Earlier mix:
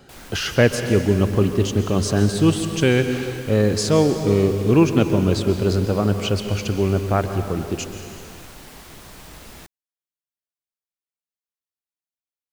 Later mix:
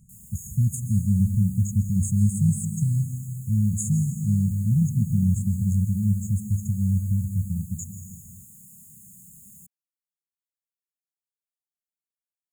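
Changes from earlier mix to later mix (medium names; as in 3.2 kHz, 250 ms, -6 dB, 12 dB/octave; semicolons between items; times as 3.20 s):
background: add high-pass 190 Hz; master: add brick-wall FIR band-stop 220–6500 Hz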